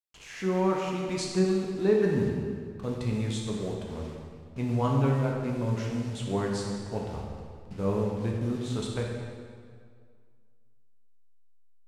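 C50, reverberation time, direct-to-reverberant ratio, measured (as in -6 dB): 1.0 dB, 2.0 s, -1.5 dB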